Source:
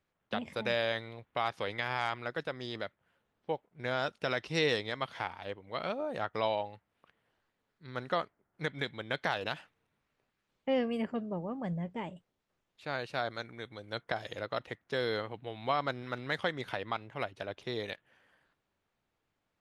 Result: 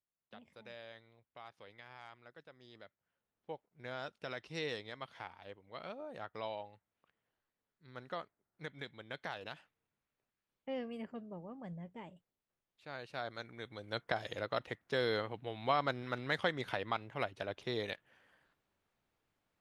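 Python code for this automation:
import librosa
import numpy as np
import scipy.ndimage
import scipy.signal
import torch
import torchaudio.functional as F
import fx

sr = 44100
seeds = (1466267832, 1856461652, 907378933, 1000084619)

y = fx.gain(x, sr, db=fx.line((2.53, -20.0), (3.5, -10.5), (12.89, -10.5), (13.84, -1.0)))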